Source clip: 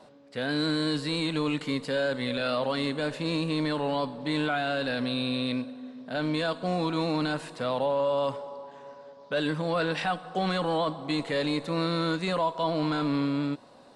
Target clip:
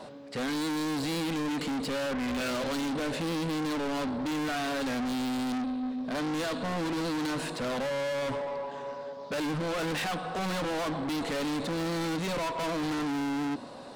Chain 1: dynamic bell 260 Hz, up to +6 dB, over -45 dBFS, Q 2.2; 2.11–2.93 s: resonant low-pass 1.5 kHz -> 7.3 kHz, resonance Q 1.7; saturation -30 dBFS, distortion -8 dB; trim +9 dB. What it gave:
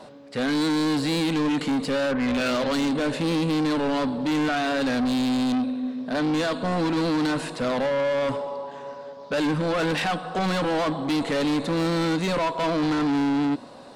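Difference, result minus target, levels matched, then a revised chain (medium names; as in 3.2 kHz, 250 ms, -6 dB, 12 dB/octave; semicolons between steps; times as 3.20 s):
saturation: distortion -4 dB
dynamic bell 260 Hz, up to +6 dB, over -45 dBFS, Q 2.2; 2.11–2.93 s: resonant low-pass 1.5 kHz -> 7.3 kHz, resonance Q 1.7; saturation -39 dBFS, distortion -4 dB; trim +9 dB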